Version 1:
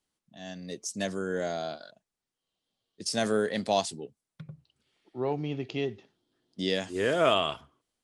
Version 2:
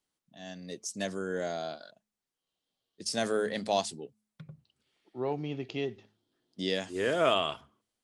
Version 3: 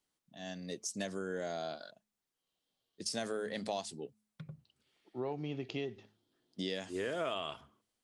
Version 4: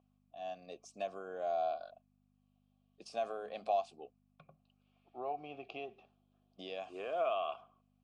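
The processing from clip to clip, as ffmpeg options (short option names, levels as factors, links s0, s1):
-af "lowshelf=f=120:g=-4,bandreject=f=106.5:t=h:w=4,bandreject=f=213:t=h:w=4,volume=0.794"
-af "acompressor=threshold=0.0178:ratio=4"
-filter_complex "[0:a]aeval=exprs='val(0)+0.00282*(sin(2*PI*50*n/s)+sin(2*PI*2*50*n/s)/2+sin(2*PI*3*50*n/s)/3+sin(2*PI*4*50*n/s)/4+sin(2*PI*5*50*n/s)/5)':c=same,asplit=3[s0][s1][s2];[s0]bandpass=f=730:t=q:w=8,volume=1[s3];[s1]bandpass=f=1090:t=q:w=8,volume=0.501[s4];[s2]bandpass=f=2440:t=q:w=8,volume=0.355[s5];[s3][s4][s5]amix=inputs=3:normalize=0,volume=3.16"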